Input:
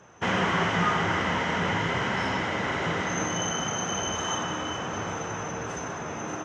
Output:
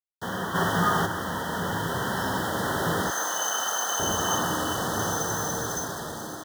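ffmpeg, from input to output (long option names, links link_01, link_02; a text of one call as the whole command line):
ffmpeg -i in.wav -filter_complex "[0:a]asettb=1/sr,asplit=3[link_01][link_02][link_03];[link_01]atrim=end=4.994[link_04];[link_02]atrim=start=4.99:end=5.85,asetpts=PTS-STARTPTS,afade=type=in:duration=0.004:curve=qsin,afade=type=out:start_time=0.856:duration=0.004:curve=qsin,highshelf=frequency=4100:gain=9.5[link_05];[link_03]atrim=start=5.846[link_06];[link_04][link_05]acrossfade=duration=0.004:curve1=hsin:curve2=qsin[link_07];[link_07][link_06]acrossfade=duration=0.004:curve1=qsin:curve2=hsin,acrusher=bits=5:mix=0:aa=0.000001,asplit=3[link_08][link_09][link_10];[link_08]afade=type=out:start_time=0.54:duration=0.02[link_11];[link_09]acontrast=65,afade=type=in:start_time=0.54:duration=0.02,afade=type=out:start_time=1.05:duration=0.02[link_12];[link_10]afade=type=in:start_time=1.05:duration=0.02[link_13];[link_11][link_12][link_13]amix=inputs=3:normalize=0,asuperstop=centerf=2400:order=20:qfactor=2.1,dynaudnorm=framelen=620:gausssize=5:maxgain=9.5dB,asettb=1/sr,asplit=3[link_14][link_15][link_16];[link_14]atrim=end=3.104[link_17];[link_15]atrim=start=3.1:end=4,asetpts=PTS-STARTPTS,afade=type=in:duration=0.004:curve=qsin,afade=type=out:start_time=0.896:duration=0.004:curve=qsin,highpass=720[link_18];[link_16]atrim=start=3.996[link_19];[link_17][link_18]acrossfade=duration=0.004:curve1=hsin:curve2=qsin[link_20];[link_20][link_19]acrossfade=duration=0.004:curve1=qsin:curve2=hsin,volume=-5.5dB" out.wav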